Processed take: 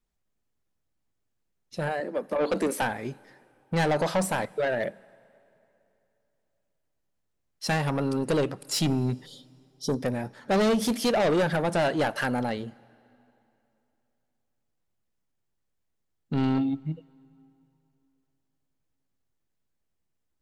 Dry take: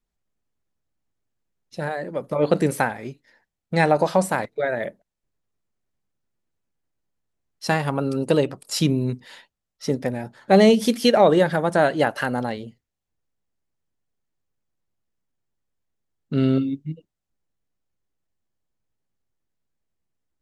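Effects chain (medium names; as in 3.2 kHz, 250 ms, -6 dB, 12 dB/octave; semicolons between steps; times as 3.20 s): 2.00–2.82 s: elliptic high-pass 200 Hz; 9.26–10.02 s: spectral selection erased 560–3000 Hz; saturation -20 dBFS, distortion -7 dB; on a send: reverberation RT60 3.0 s, pre-delay 16 ms, DRR 23.5 dB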